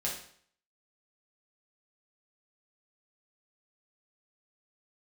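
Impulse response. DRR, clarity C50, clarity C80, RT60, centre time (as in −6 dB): −5.0 dB, 5.0 dB, 9.5 dB, 0.55 s, 33 ms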